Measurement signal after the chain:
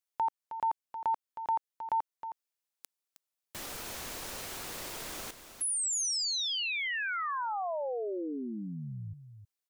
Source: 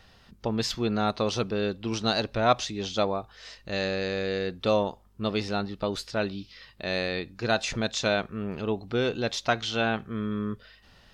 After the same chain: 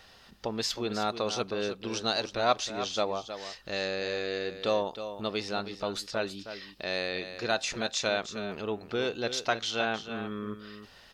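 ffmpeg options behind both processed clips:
-filter_complex "[0:a]bass=f=250:g=-9,treble=f=4k:g=3,asplit=2[a][b];[b]acompressor=threshold=-43dB:ratio=6,volume=0.5dB[c];[a][c]amix=inputs=2:normalize=0,aecho=1:1:315:0.299,volume=-4dB"

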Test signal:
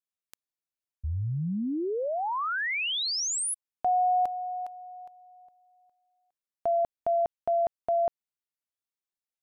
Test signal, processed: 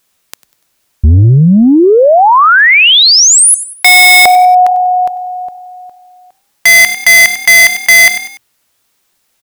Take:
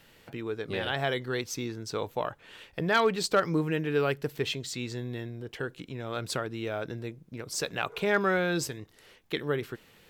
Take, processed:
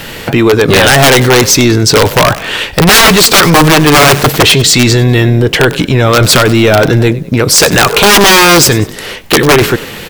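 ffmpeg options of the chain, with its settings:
-filter_complex "[0:a]aeval=exprs='(mod(14.1*val(0)+1,2)-1)/14.1':c=same,asplit=4[a][b][c][d];[b]adelay=97,afreqshift=36,volume=-23dB[e];[c]adelay=194,afreqshift=72,volume=-31dB[f];[d]adelay=291,afreqshift=108,volume=-38.9dB[g];[a][e][f][g]amix=inputs=4:normalize=0,apsyclip=36dB,volume=-2dB"

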